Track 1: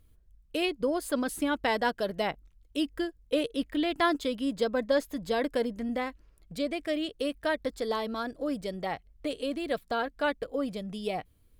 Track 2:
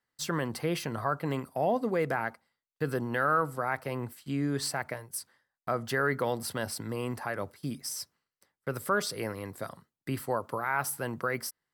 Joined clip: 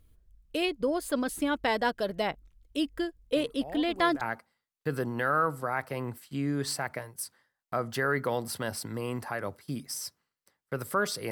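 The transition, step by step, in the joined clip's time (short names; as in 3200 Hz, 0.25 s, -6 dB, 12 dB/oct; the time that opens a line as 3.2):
track 1
3.36 add track 2 from 1.31 s 0.85 s -14 dB
4.21 switch to track 2 from 2.16 s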